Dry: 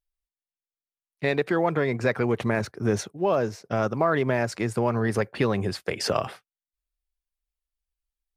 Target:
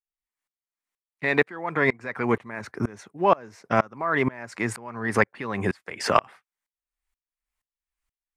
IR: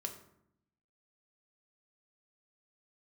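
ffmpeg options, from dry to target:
-filter_complex "[0:a]asplit=2[s0][s1];[s1]acompressor=threshold=0.0282:ratio=6,volume=0.891[s2];[s0][s2]amix=inputs=2:normalize=0,equalizer=f=250:t=o:w=1:g=6,equalizer=f=1000:t=o:w=1:g=10,equalizer=f=2000:t=o:w=1:g=11,equalizer=f=8000:t=o:w=1:g=6,aeval=exprs='val(0)*pow(10,-29*if(lt(mod(-2.1*n/s,1),2*abs(-2.1)/1000),1-mod(-2.1*n/s,1)/(2*abs(-2.1)/1000),(mod(-2.1*n/s,1)-2*abs(-2.1)/1000)/(1-2*abs(-2.1)/1000))/20)':c=same,volume=0.891"

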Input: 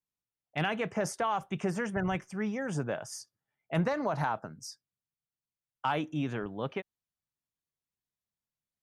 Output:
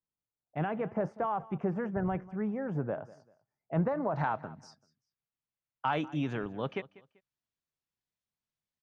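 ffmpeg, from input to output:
-af "asetnsamples=n=441:p=0,asendcmd='4.16 lowpass f 2800;5.93 lowpass f 6100',lowpass=1100,aecho=1:1:194|388:0.1|0.028"

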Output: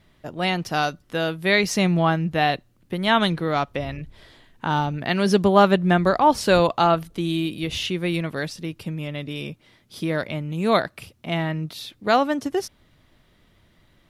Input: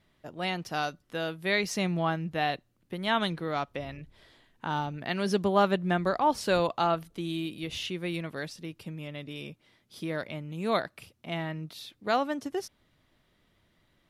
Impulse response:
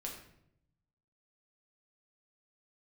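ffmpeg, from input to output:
-af "lowshelf=f=130:g=5,volume=2.51"

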